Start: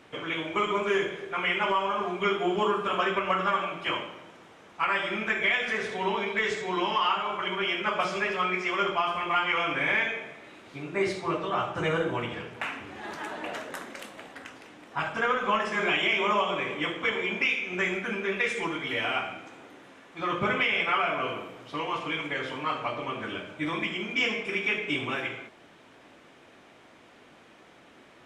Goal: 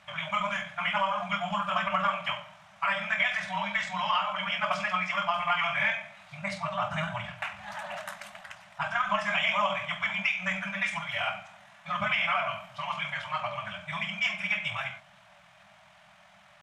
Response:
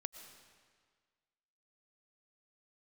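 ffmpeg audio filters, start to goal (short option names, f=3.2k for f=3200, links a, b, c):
-af "atempo=1.7,afftfilt=real='re*(1-between(b*sr/4096,210,560))':imag='im*(1-between(b*sr/4096,210,560))':win_size=4096:overlap=0.75,bandreject=f=47.28:t=h:w=4,bandreject=f=94.56:t=h:w=4,bandreject=f=141.84:t=h:w=4"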